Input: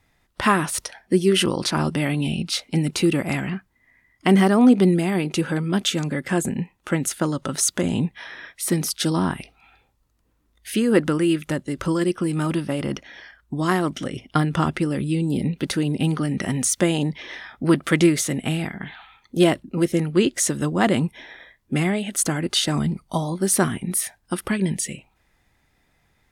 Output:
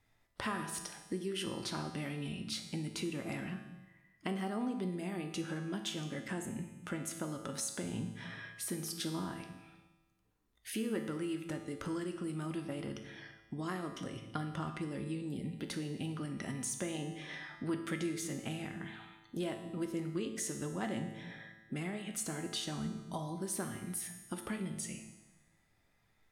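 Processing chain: on a send at -10.5 dB: reverberation RT60 0.70 s, pre-delay 3 ms; on the sum: compression 2.5:1, threshold -29 dBFS, peak gain reduction 12.5 dB; feedback comb 110 Hz, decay 1.2 s, harmonics all, mix 80%; trim +2 dB

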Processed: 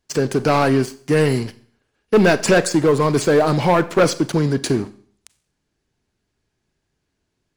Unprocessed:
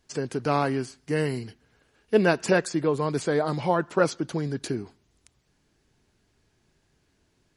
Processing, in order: waveshaping leveller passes 3; Schroeder reverb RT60 0.52 s, combs from 30 ms, DRR 15 dB

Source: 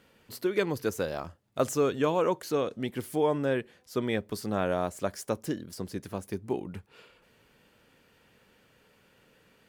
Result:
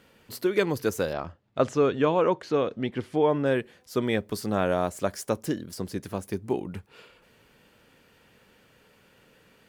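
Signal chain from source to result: 1.13–3.46 s: low-pass 3.8 kHz 12 dB/octave; trim +3.5 dB

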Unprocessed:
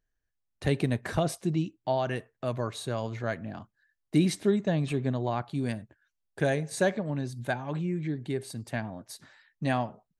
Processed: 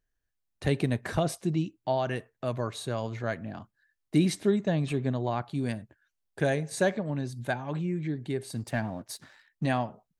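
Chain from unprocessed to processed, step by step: 8.53–9.66 s: waveshaping leveller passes 1

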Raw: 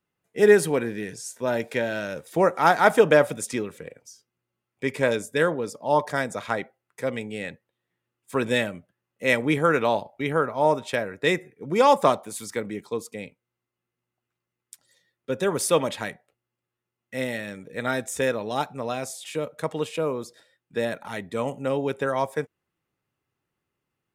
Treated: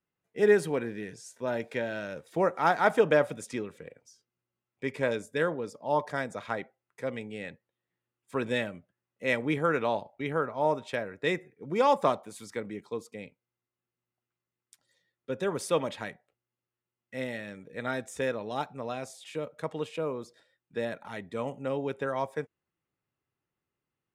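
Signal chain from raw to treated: treble shelf 7.7 kHz -11.5 dB; trim -6 dB

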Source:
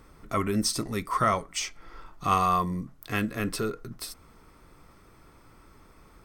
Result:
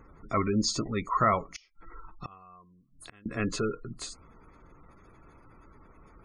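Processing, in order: knee-point frequency compression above 3.9 kHz 1.5:1; spectral gate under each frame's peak -25 dB strong; 1.45–3.26 s: inverted gate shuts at -27 dBFS, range -29 dB

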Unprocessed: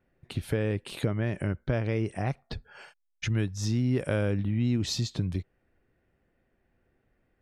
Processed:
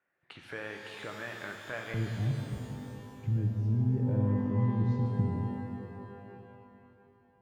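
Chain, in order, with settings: band-pass filter 1.5 kHz, Q 1.4, from 1.94 s 130 Hz; pitch-shifted reverb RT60 2.8 s, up +12 st, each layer -8 dB, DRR 2 dB

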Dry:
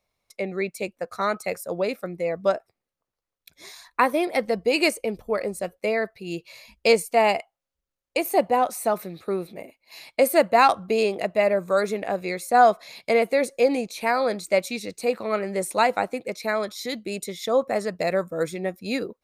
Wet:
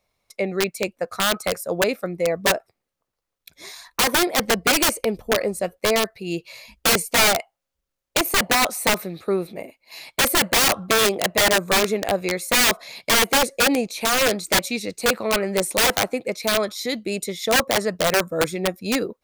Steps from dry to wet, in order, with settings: integer overflow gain 16.5 dB; trim +4.5 dB

